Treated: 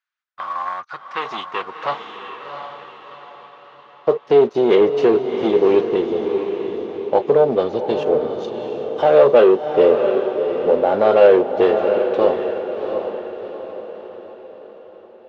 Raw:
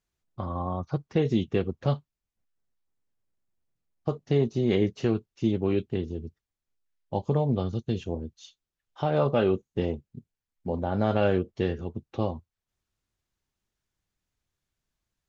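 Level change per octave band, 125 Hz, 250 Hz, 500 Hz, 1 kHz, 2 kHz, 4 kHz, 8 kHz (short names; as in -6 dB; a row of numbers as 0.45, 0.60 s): -8.5 dB, +5.5 dB, +15.0 dB, +13.0 dB, +11.0 dB, +9.0 dB, n/a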